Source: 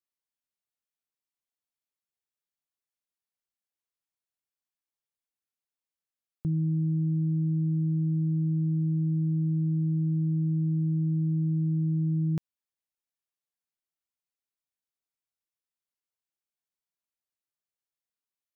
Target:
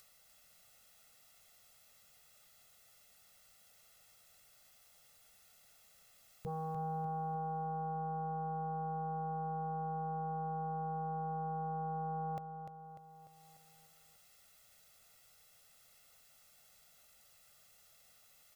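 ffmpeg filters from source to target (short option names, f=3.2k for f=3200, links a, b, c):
-af "agate=range=-33dB:threshold=-12dB:ratio=3:detection=peak,aecho=1:1:1.5:0.96,acompressor=mode=upward:threshold=-60dB:ratio=2.5,aeval=exprs='0.00299*sin(PI/2*1.78*val(0)/0.00299)':c=same,aecho=1:1:297|594|891|1188|1485|1782:0.398|0.211|0.112|0.0593|0.0314|0.0166,volume=13.5dB"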